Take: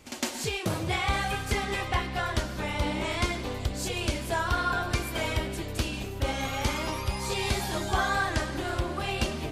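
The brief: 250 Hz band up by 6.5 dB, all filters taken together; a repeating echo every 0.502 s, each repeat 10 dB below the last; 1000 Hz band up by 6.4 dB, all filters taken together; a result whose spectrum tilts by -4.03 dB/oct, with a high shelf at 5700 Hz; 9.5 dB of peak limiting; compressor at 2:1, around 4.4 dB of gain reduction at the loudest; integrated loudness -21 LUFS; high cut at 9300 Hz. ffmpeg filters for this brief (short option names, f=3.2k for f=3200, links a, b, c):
-af "lowpass=9.3k,equalizer=f=250:t=o:g=8,equalizer=f=1k:t=o:g=7.5,highshelf=f=5.7k:g=8,acompressor=threshold=-26dB:ratio=2,alimiter=limit=-22dB:level=0:latency=1,aecho=1:1:502|1004|1506|2008:0.316|0.101|0.0324|0.0104,volume=9.5dB"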